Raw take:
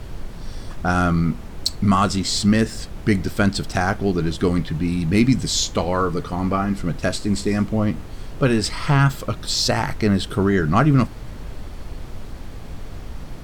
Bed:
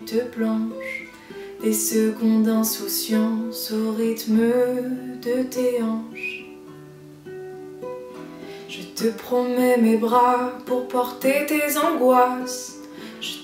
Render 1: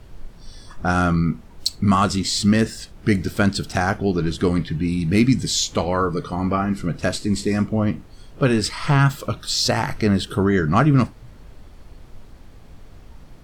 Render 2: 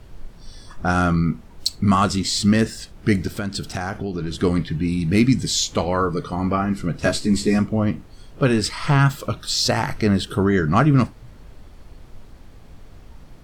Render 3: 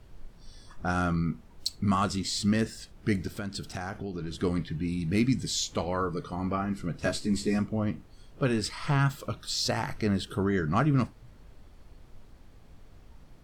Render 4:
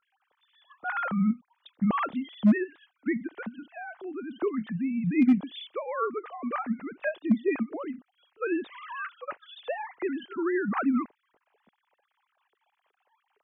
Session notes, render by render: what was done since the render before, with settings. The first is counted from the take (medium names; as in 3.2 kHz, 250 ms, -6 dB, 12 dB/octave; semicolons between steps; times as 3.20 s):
noise print and reduce 10 dB
3.27–4.34 s: compression, threshold -22 dBFS; 7.00–7.59 s: doubling 14 ms -2 dB
trim -9 dB
formants replaced by sine waves; hard clipper -14 dBFS, distortion -24 dB